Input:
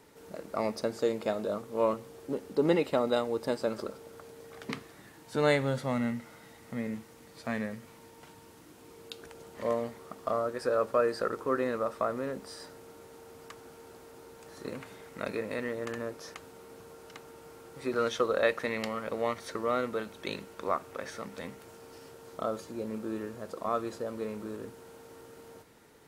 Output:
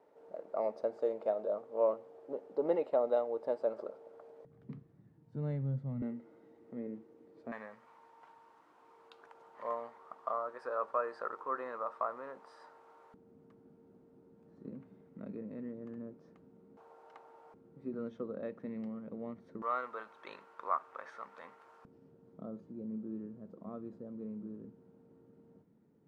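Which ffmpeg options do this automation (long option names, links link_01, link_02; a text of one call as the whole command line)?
ffmpeg -i in.wav -af "asetnsamples=nb_out_samples=441:pad=0,asendcmd='4.45 bandpass f 140;6.02 bandpass f 360;7.52 bandpass f 1000;13.14 bandpass f 200;16.77 bandpass f 820;17.54 bandpass f 200;19.62 bandpass f 1100;21.85 bandpass f 190',bandpass=frequency=620:width_type=q:width=2.3:csg=0" out.wav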